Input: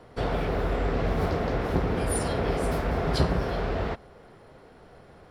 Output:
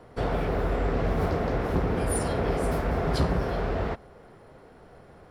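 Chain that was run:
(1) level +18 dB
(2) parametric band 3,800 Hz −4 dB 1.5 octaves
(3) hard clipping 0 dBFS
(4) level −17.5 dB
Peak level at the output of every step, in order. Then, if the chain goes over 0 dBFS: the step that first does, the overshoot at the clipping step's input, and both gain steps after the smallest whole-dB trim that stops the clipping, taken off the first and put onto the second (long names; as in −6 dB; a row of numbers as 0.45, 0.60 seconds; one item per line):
+8.0, +8.0, 0.0, −17.5 dBFS
step 1, 8.0 dB
step 1 +10 dB, step 4 −9.5 dB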